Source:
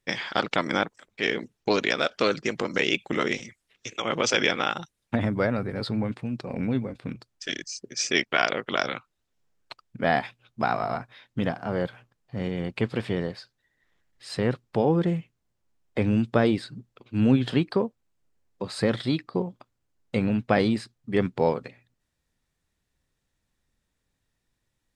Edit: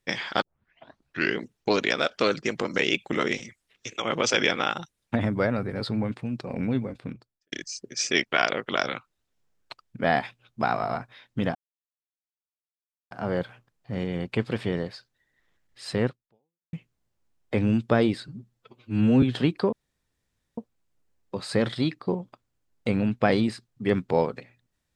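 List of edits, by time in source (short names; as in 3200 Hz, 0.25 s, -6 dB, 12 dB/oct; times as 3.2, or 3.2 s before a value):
0.42 tape start 0.98 s
6.92–7.52 studio fade out
11.55 insert silence 1.56 s
14.5–15.17 fade out exponential
16.72–17.35 stretch 1.5×
17.85 insert room tone 0.85 s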